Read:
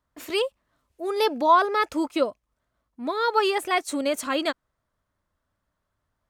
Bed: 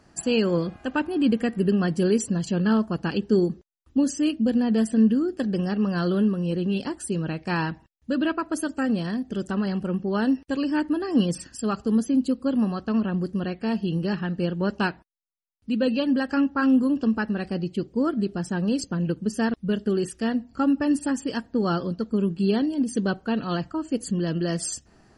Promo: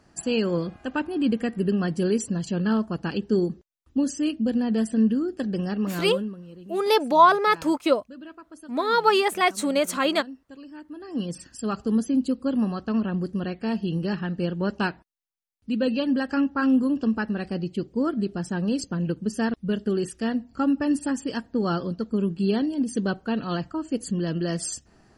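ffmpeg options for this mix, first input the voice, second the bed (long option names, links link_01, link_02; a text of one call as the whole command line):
ffmpeg -i stem1.wav -i stem2.wav -filter_complex "[0:a]adelay=5700,volume=2.5dB[link_01];[1:a]volume=15dB,afade=type=out:start_time=5.76:duration=0.7:silence=0.158489,afade=type=in:start_time=10.87:duration=0.92:silence=0.141254[link_02];[link_01][link_02]amix=inputs=2:normalize=0" out.wav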